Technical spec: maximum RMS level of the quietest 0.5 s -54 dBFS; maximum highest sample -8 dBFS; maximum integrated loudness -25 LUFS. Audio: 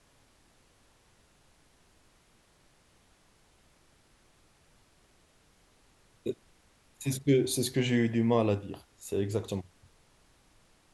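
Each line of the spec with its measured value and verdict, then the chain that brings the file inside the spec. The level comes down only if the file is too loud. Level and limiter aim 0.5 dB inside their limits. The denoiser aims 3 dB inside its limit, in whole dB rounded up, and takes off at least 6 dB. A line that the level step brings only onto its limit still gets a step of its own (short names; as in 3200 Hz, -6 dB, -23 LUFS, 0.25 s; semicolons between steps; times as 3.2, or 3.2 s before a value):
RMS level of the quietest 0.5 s -65 dBFS: OK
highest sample -13.0 dBFS: OK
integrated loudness -30.0 LUFS: OK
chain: none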